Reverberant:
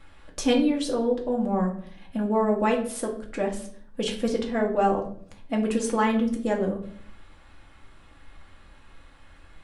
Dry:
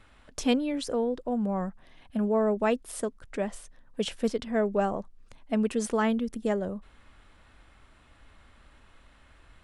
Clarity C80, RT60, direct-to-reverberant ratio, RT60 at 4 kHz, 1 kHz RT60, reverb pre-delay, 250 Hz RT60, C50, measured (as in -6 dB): 13.5 dB, 0.60 s, 0.0 dB, 0.45 s, 0.50 s, 4 ms, 0.80 s, 9.5 dB